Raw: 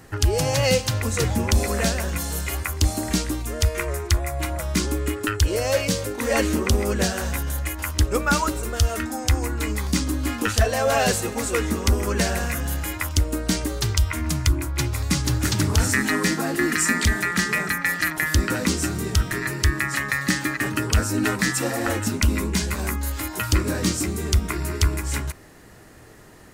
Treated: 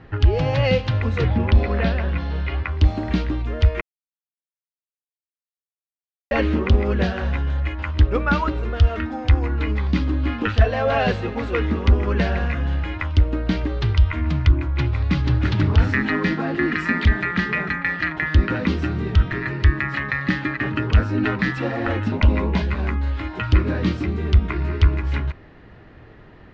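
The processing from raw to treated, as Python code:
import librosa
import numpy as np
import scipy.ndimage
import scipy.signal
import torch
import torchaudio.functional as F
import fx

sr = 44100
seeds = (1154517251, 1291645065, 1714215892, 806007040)

y = fx.savgol(x, sr, points=15, at=(1.25, 2.72))
y = fx.band_shelf(y, sr, hz=680.0, db=9.0, octaves=1.3, at=(22.12, 22.62))
y = fx.edit(y, sr, fx.silence(start_s=3.81, length_s=2.5), tone=tone)
y = scipy.signal.sosfilt(scipy.signal.cheby2(4, 60, 10000.0, 'lowpass', fs=sr, output='sos'), y)
y = fx.low_shelf(y, sr, hz=160.0, db=6.0)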